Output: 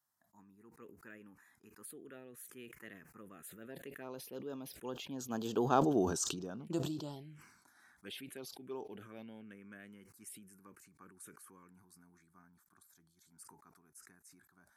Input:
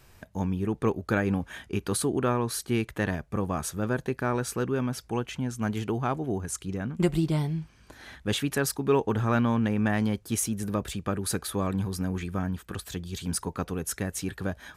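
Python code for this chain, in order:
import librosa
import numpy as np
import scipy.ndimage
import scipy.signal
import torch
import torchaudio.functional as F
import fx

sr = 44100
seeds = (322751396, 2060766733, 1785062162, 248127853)

y = fx.doppler_pass(x, sr, speed_mps=19, closest_m=3.9, pass_at_s=5.86)
y = scipy.signal.sosfilt(scipy.signal.butter(2, 280.0, 'highpass', fs=sr, output='sos'), y)
y = fx.high_shelf(y, sr, hz=7800.0, db=8.0)
y = fx.env_phaser(y, sr, low_hz=440.0, high_hz=2100.0, full_db=-42.5)
y = fx.sustainer(y, sr, db_per_s=57.0)
y = y * 10.0 ** (3.5 / 20.0)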